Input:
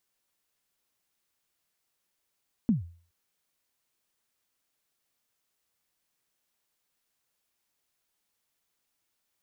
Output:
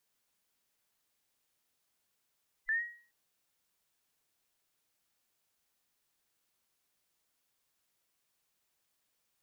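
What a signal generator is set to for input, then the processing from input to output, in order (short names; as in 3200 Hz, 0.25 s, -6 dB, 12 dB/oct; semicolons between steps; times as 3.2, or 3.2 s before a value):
kick drum length 0.42 s, from 250 Hz, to 85 Hz, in 0.138 s, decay 0.43 s, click off, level -17 dB
band inversion scrambler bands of 2000 Hz; limiter -28 dBFS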